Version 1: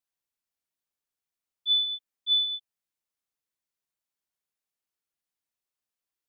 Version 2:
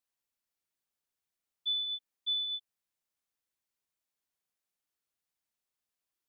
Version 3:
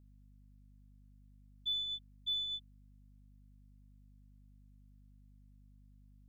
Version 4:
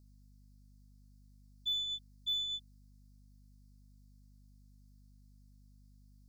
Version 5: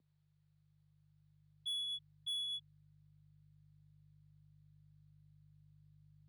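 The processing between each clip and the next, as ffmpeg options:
-af "acompressor=threshold=-31dB:ratio=6"
-af "aeval=exprs='0.0473*(cos(1*acos(clip(val(0)/0.0473,-1,1)))-cos(1*PI/2))+0.00075*(cos(4*acos(clip(val(0)/0.0473,-1,1)))-cos(4*PI/2))':c=same,aeval=exprs='val(0)+0.00158*(sin(2*PI*50*n/s)+sin(2*PI*2*50*n/s)/2+sin(2*PI*3*50*n/s)/3+sin(2*PI*4*50*n/s)/4+sin(2*PI*5*50*n/s)/5)':c=same,volume=-3.5dB"
-af "highshelf=f=3.7k:t=q:w=3:g=8.5"
-af "highpass=f=280:t=q:w=0.5412,highpass=f=280:t=q:w=1.307,lowpass=f=3.5k:t=q:w=0.5176,lowpass=f=3.5k:t=q:w=0.7071,lowpass=f=3.5k:t=q:w=1.932,afreqshift=-100,asubboost=boost=6:cutoff=250,asoftclip=type=tanh:threshold=-39dB,volume=2.5dB"

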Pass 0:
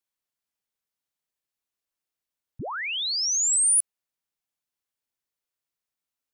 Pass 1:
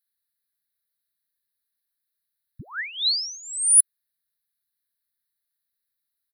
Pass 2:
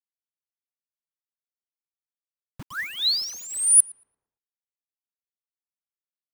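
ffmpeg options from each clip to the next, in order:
-af "firequalizer=gain_entry='entry(150,0);entry(550,-22);entry(1700,6);entry(2800,-12);entry(4000,10);entry(6800,-19);entry(10000,10)':delay=0.05:min_phase=1,volume=-1dB"
-filter_complex "[0:a]acrusher=bits=6:mix=0:aa=0.000001,asplit=2[a][b];[b]adelay=114,lowpass=f=1.9k:p=1,volume=-14dB,asplit=2[c][d];[d]adelay=114,lowpass=f=1.9k:p=1,volume=0.54,asplit=2[e][f];[f]adelay=114,lowpass=f=1.9k:p=1,volume=0.54,asplit=2[g][h];[h]adelay=114,lowpass=f=1.9k:p=1,volume=0.54,asplit=2[i][j];[j]adelay=114,lowpass=f=1.9k:p=1,volume=0.54[k];[a][c][e][g][i][k]amix=inputs=6:normalize=0"

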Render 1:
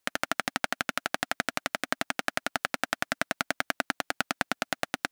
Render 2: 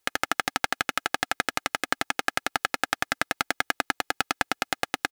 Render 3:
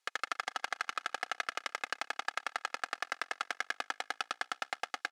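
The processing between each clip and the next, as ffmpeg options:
-af "aecho=1:1:2.4:0.51,volume=2.5dB"
-af "aeval=exprs='(tanh(17.8*val(0)+0.7)-tanh(0.7))/17.8':c=same,highpass=670,lowpass=7.2k,aecho=1:1:118|236|354|472|590:0.0891|0.0517|0.03|0.0174|0.0101,volume=1.5dB"

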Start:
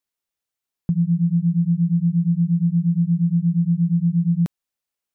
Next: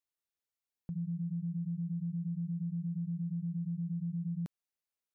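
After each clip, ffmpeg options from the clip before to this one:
-af "acompressor=threshold=-20dB:ratio=6,alimiter=limit=-22.5dB:level=0:latency=1:release=79,volume=-9dB"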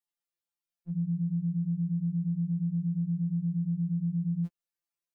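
-af "afftfilt=real='re*2.83*eq(mod(b,8),0)':imag='im*2.83*eq(mod(b,8),0)':win_size=2048:overlap=0.75"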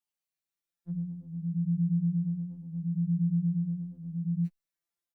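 -filter_complex "[0:a]asplit=2[a][b];[b]adelay=5.1,afreqshift=0.73[c];[a][c]amix=inputs=2:normalize=1,volume=3dB"

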